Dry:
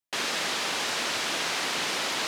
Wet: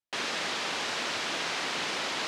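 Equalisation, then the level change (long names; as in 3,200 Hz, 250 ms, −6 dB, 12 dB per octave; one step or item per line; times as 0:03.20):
high-frequency loss of the air 53 metres
−2.0 dB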